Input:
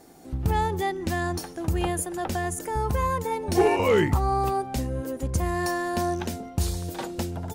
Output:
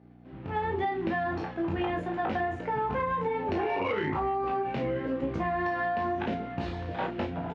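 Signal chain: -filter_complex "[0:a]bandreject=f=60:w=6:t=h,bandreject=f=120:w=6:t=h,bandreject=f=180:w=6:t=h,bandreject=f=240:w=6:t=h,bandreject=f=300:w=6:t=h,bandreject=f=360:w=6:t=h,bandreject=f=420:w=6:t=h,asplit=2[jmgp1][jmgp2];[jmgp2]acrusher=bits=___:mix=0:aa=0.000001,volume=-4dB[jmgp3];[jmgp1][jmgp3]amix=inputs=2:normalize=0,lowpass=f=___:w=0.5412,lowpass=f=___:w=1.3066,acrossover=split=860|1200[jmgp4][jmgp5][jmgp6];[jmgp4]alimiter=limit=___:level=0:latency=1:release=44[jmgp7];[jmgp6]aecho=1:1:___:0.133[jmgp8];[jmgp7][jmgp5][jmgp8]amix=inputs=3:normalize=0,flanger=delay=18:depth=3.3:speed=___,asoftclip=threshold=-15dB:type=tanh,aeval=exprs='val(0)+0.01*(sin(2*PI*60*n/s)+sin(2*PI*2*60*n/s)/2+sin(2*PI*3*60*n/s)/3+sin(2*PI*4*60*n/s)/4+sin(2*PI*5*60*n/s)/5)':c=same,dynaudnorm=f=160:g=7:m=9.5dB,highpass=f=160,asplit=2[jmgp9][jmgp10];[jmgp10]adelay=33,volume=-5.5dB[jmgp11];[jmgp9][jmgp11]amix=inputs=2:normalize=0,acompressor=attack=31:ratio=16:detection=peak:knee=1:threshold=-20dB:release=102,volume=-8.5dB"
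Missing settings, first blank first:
6, 2800, 2800, -15.5dB, 965, 0.93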